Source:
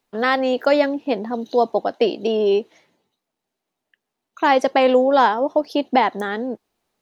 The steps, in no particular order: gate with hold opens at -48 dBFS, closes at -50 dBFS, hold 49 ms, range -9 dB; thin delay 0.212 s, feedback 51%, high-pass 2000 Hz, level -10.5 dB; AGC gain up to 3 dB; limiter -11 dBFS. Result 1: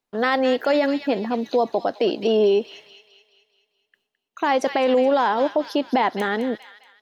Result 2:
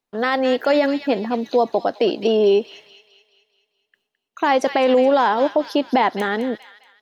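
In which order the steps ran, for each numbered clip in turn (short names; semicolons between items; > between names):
gate with hold > thin delay > AGC > limiter; gate with hold > thin delay > limiter > AGC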